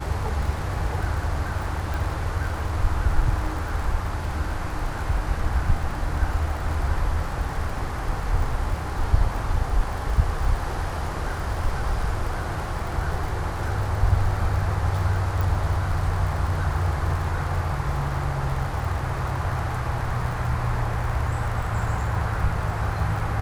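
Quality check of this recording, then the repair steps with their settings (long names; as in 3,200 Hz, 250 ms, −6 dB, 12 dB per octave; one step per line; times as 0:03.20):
surface crackle 55 per second −31 dBFS
0:01.94: click
0:15.41: click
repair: click removal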